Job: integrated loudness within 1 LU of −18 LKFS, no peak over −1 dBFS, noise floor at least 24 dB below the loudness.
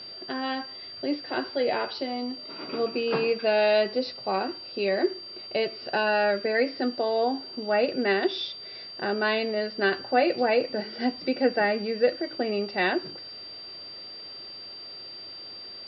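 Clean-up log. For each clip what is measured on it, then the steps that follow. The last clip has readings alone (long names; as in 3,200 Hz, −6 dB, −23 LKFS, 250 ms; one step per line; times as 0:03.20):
interfering tone 4,700 Hz; level of the tone −39 dBFS; integrated loudness −27.0 LKFS; sample peak −10.0 dBFS; target loudness −18.0 LKFS
→ notch filter 4,700 Hz, Q 30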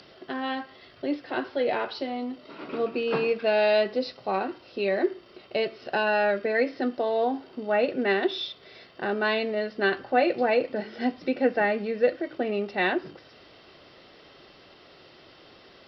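interfering tone none found; integrated loudness −27.0 LKFS; sample peak −10.5 dBFS; target loudness −18.0 LKFS
→ level +9 dB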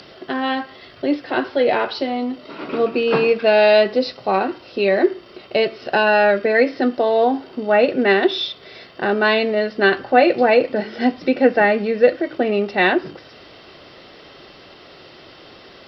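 integrated loudness −18.0 LKFS; sample peak −1.5 dBFS; background noise floor −44 dBFS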